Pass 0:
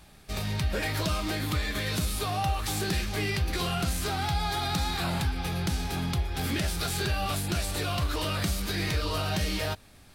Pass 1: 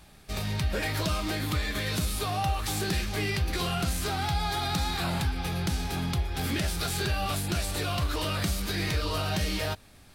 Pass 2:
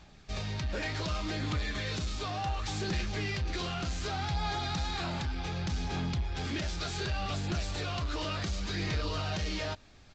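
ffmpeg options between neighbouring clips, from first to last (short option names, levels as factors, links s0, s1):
-af anull
-af "asoftclip=type=tanh:threshold=0.0596,aresample=16000,aresample=44100,aphaser=in_gain=1:out_gain=1:delay=3.4:decay=0.23:speed=0.67:type=sinusoidal,volume=0.708"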